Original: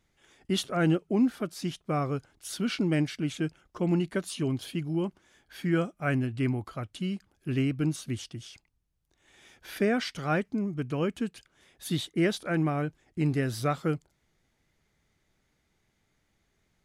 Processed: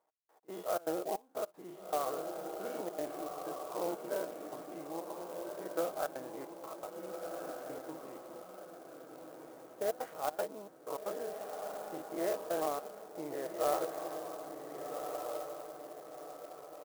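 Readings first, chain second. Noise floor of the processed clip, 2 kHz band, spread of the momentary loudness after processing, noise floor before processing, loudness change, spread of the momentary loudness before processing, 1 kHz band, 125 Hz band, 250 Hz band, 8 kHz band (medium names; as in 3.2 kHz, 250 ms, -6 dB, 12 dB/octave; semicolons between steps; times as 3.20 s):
-58 dBFS, -13.5 dB, 13 LU, -74 dBFS, -10.0 dB, 9 LU, -1.5 dB, -29.0 dB, -17.0 dB, -5.5 dB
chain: every event in the spectrogram widened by 120 ms; trance gate "x..x.xxx.xx" 156 bpm -24 dB; bit crusher 11-bit; Butterworth band-pass 730 Hz, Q 1.4; comb 6.3 ms, depth 37%; echo that smears into a reverb 1485 ms, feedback 43%, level -4.5 dB; sampling jitter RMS 0.05 ms; trim -2.5 dB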